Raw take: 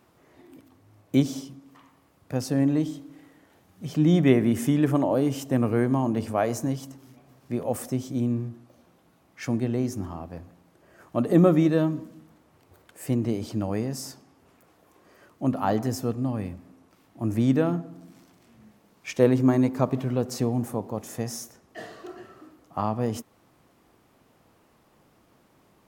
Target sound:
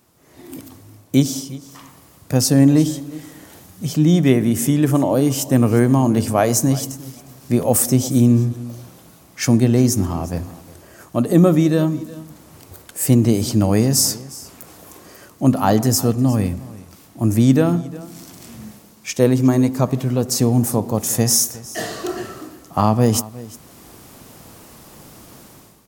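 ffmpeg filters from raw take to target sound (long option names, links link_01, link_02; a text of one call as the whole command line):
ffmpeg -i in.wav -af "bass=frequency=250:gain=4,treble=frequency=4000:gain=12,dynaudnorm=framelen=180:gausssize=5:maxgain=16.5dB,aecho=1:1:358:0.112,volume=-1dB" out.wav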